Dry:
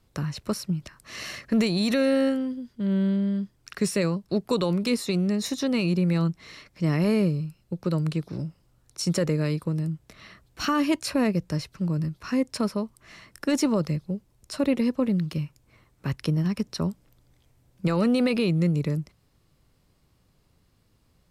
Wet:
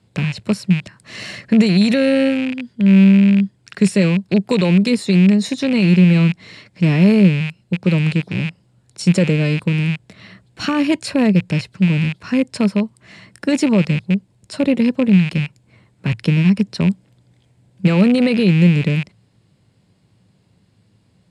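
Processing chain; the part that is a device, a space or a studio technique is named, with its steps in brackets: car door speaker with a rattle (rattle on loud lows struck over -37 dBFS, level -22 dBFS; cabinet simulation 100–9100 Hz, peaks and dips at 110 Hz +9 dB, 190 Hz +8 dB, 1.2 kHz -7 dB, 5.9 kHz -8 dB); trim +6.5 dB

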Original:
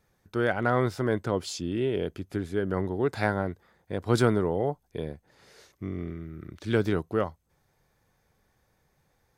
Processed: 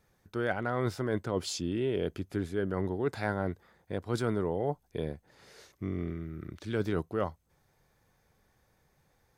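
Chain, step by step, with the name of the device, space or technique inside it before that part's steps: compression on the reversed sound (reverse; compression 6:1, threshold -26 dBFS, peak gain reduction 10 dB; reverse)

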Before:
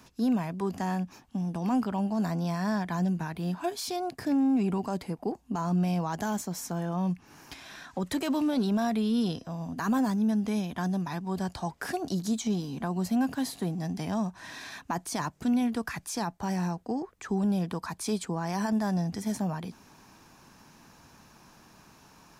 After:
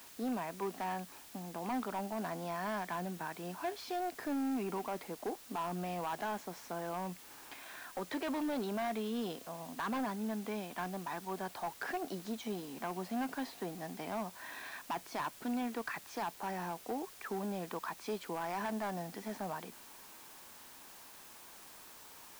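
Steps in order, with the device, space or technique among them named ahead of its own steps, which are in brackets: aircraft radio (band-pass 390–2700 Hz; hard clipper -30 dBFS, distortion -14 dB; white noise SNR 15 dB); trim -2 dB

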